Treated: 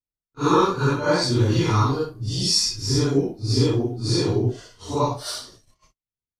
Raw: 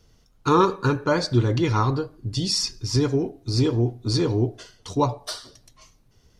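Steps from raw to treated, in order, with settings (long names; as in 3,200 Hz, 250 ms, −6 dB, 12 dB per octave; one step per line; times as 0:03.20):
random phases in long frames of 200 ms
high-shelf EQ 5,700 Hz +6.5 dB, from 0:01.22 +11.5 dB, from 0:02.29 +6.5 dB
noise gate −48 dBFS, range −41 dB
one half of a high-frequency compander decoder only
level +1 dB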